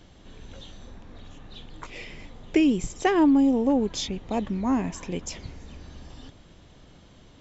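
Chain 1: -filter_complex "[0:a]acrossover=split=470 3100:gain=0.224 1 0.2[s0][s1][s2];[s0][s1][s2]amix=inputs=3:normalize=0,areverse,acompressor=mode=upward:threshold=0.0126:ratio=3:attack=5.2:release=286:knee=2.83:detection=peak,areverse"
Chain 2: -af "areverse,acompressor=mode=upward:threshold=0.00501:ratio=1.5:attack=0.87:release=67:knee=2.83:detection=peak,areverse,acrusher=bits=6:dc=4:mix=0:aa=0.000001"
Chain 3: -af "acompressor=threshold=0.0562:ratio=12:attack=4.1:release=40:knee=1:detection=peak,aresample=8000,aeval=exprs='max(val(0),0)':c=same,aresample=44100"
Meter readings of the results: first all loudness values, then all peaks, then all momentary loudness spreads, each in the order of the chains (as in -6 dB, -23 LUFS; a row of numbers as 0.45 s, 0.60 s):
-32.0 LUFS, -24.0 LUFS, -37.0 LUFS; -13.0 dBFS, -9.5 dBFS, -19.0 dBFS; 21 LU, 18 LU, 18 LU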